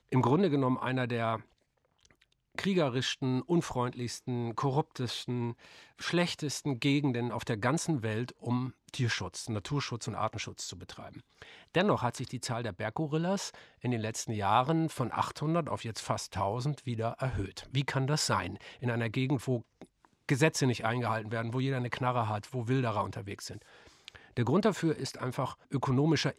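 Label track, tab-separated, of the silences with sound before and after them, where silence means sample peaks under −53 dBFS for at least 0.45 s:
1.430000	2.030000	silence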